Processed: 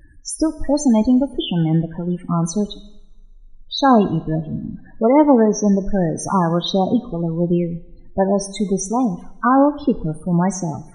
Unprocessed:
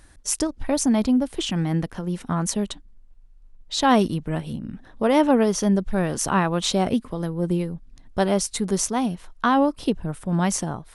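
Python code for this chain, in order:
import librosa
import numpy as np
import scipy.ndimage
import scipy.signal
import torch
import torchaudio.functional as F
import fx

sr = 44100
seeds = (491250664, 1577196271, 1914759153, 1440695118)

y = fx.spec_topn(x, sr, count=16)
y = fx.rev_double_slope(y, sr, seeds[0], early_s=0.76, late_s=1.9, knee_db=-22, drr_db=12.5)
y = y * librosa.db_to_amplitude(5.0)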